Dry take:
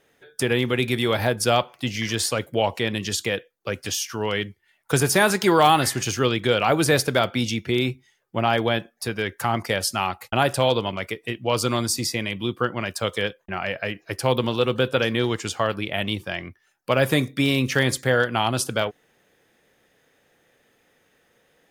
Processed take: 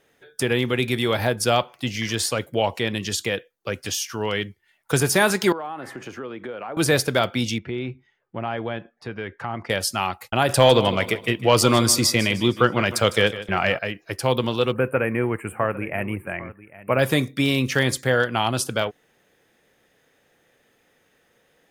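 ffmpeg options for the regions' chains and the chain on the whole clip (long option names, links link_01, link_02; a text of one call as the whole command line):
ffmpeg -i in.wav -filter_complex "[0:a]asettb=1/sr,asplit=3[link_01][link_02][link_03];[link_01]atrim=end=5.524[link_04];[link_02]atrim=start=5.52:end=6.77,asetpts=PTS-STARTPTS,afade=type=in:duration=0.004:curve=qsin,afade=type=out:start_time=1.246:duration=0.004:curve=qsin,acrossover=split=190 2000:gain=0.158 1 0.0891[link_05][link_06][link_07];[link_05][link_06][link_07]amix=inputs=3:normalize=0,acompressor=threshold=-31dB:ratio=4:attack=3.2:release=140:knee=1:detection=peak[link_08];[link_03]atrim=start=6.766[link_09];[link_04][link_08]acrossfade=duration=0.004:curve1=hsin:curve2=qsin[link_10];[link_10][link_09]acrossfade=duration=0.004:curve1=qsin:curve2=hsin,asettb=1/sr,asplit=3[link_11][link_12][link_13];[link_11]atrim=end=7.584[link_14];[link_12]atrim=start=7.58:end=9.7,asetpts=PTS-STARTPTS,afade=type=in:duration=0.004:curve=qsin,afade=type=out:start_time=2.116:duration=0.004:curve=qsin,lowpass=2300,acompressor=threshold=-34dB:ratio=1.5:attack=3.2:release=140:knee=1:detection=peak[link_15];[link_13]atrim=start=9.696[link_16];[link_14][link_15]acrossfade=duration=0.004:curve1=hsin:curve2=qsin[link_17];[link_17][link_16]acrossfade=duration=0.004:curve1=qsin:curve2=hsin,asettb=1/sr,asplit=3[link_18][link_19][link_20];[link_18]atrim=end=10.494[link_21];[link_19]atrim=start=10.49:end=13.79,asetpts=PTS-STARTPTS,afade=type=in:duration=0.004:curve=qsin,afade=type=out:start_time=3.296:duration=0.004:curve=qsin,aecho=1:1:154|308|462|616:0.178|0.0711|0.0285|0.0114,atrim=end_sample=145530,acontrast=67[link_22];[link_20]atrim=start=13.786[link_23];[link_21][link_22]acrossfade=duration=0.004:curve1=hsin:curve2=qsin[link_24];[link_24][link_23]acrossfade=duration=0.004:curve1=qsin:curve2=hsin,asettb=1/sr,asplit=3[link_25][link_26][link_27];[link_25]atrim=end=14.724[link_28];[link_26]atrim=start=14.72:end=16.99,asetpts=PTS-STARTPTS,afade=type=in:duration=0.004:curve=qsin,afade=type=out:start_time=2.266:duration=0.004:curve=qsin,asuperstop=centerf=4800:order=12:qfactor=0.8,aecho=1:1:803:0.133,atrim=end_sample=100107[link_29];[link_27]atrim=start=16.986[link_30];[link_28][link_29]acrossfade=duration=0.004:curve1=hsin:curve2=qsin[link_31];[link_31][link_30]acrossfade=duration=0.004:curve1=qsin:curve2=hsin" out.wav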